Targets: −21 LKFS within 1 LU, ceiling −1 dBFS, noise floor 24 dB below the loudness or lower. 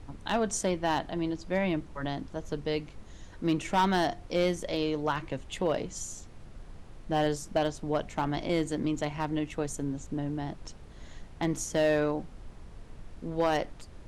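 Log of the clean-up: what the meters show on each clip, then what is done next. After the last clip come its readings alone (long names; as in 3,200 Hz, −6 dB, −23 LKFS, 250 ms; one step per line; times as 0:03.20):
share of clipped samples 0.4%; peaks flattened at −18.5 dBFS; background noise floor −48 dBFS; target noise floor −55 dBFS; integrated loudness −31.0 LKFS; sample peak −18.5 dBFS; target loudness −21.0 LKFS
→ clipped peaks rebuilt −18.5 dBFS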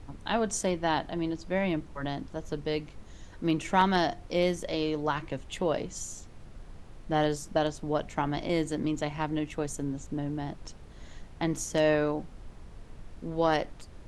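share of clipped samples 0.0%; background noise floor −48 dBFS; target noise floor −55 dBFS
→ noise reduction from a noise print 7 dB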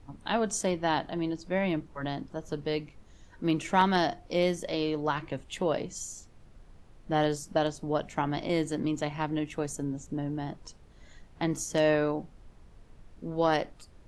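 background noise floor −55 dBFS; integrated loudness −30.5 LKFS; sample peak −9.5 dBFS; target loudness −21.0 LKFS
→ level +9.5 dB
brickwall limiter −1 dBFS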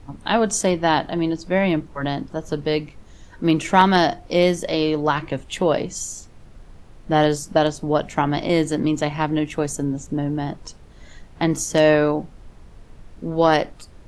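integrated loudness −21.0 LKFS; sample peak −1.0 dBFS; background noise floor −45 dBFS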